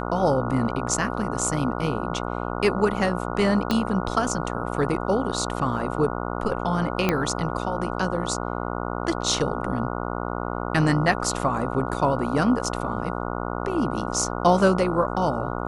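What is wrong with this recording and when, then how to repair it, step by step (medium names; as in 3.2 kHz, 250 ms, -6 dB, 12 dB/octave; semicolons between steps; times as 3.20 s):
buzz 60 Hz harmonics 24 -29 dBFS
3.71 s: pop -9 dBFS
7.09 s: pop -7 dBFS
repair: de-click; de-hum 60 Hz, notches 24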